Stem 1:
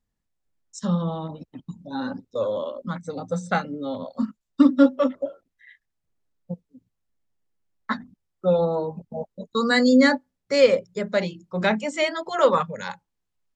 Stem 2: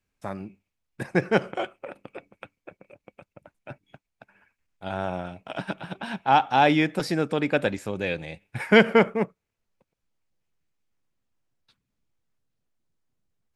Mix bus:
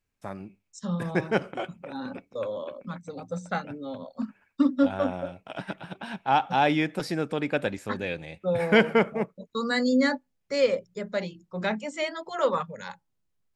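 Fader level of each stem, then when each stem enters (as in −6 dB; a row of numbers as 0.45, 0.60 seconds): −6.5, −3.5 decibels; 0.00, 0.00 seconds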